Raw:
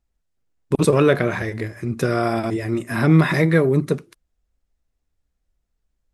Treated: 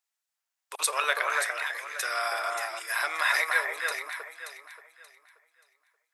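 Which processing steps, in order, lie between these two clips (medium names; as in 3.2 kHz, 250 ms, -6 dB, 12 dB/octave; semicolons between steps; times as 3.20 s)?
Bessel high-pass 1.2 kHz, order 6; treble shelf 6.1 kHz +5.5 dB; echo whose repeats swap between lows and highs 290 ms, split 1.8 kHz, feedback 52%, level -2 dB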